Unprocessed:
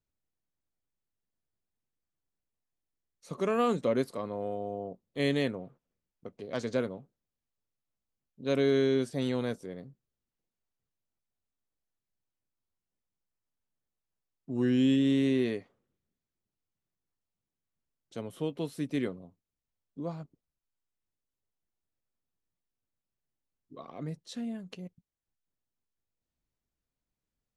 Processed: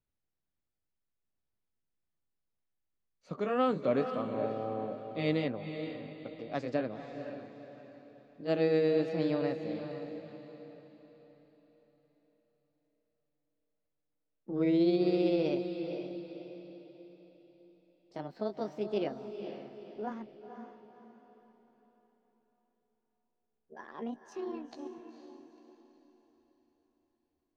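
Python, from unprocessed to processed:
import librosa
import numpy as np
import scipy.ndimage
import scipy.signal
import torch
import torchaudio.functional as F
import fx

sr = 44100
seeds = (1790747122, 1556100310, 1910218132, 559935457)

y = fx.pitch_glide(x, sr, semitones=8.5, runs='starting unshifted')
y = fx.air_absorb(y, sr, metres=180.0)
y = fx.echo_diffused(y, sr, ms=489, feedback_pct=42, wet_db=-8)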